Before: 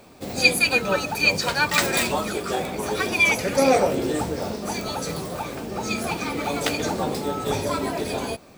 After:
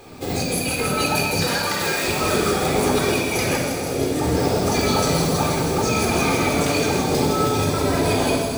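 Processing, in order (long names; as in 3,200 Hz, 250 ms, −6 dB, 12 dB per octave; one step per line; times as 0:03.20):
0:01.47–0:02.03: high-pass filter 360 Hz 12 dB per octave
compressor whose output falls as the input rises −28 dBFS, ratio −1
delay with a high-pass on its return 160 ms, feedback 83%, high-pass 5,000 Hz, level −3.5 dB
rectangular room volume 3,400 cubic metres, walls mixed, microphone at 3.9 metres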